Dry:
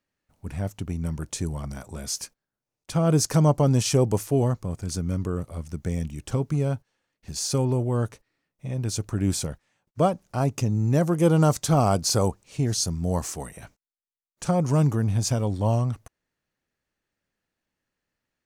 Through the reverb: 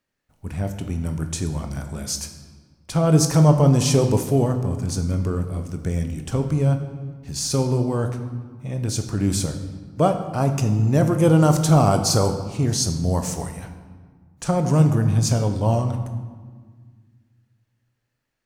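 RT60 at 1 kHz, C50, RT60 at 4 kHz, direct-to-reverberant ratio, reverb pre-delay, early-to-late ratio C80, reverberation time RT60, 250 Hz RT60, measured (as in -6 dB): 1.6 s, 8.5 dB, 1.1 s, 6.0 dB, 19 ms, 10.0 dB, 1.6 s, 2.4 s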